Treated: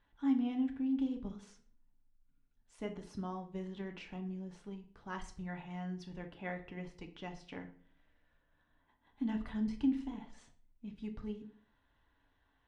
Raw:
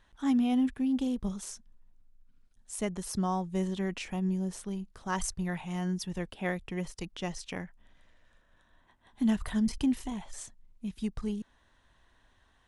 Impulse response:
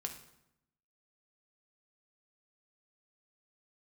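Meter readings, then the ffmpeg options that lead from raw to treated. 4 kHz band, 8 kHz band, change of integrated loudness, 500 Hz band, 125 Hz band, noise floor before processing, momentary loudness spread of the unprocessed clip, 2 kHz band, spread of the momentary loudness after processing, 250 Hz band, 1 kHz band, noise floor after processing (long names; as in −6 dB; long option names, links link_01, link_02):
−12.0 dB, −23.0 dB, −7.0 dB, −8.5 dB, −10.0 dB, −67 dBFS, 13 LU, −8.5 dB, 15 LU, −6.5 dB, −9.5 dB, −75 dBFS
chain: -filter_complex "[0:a]lowpass=3300[link_01];[1:a]atrim=start_sample=2205,asetrate=83790,aresample=44100[link_02];[link_01][link_02]afir=irnorm=-1:irlink=0,volume=-1dB"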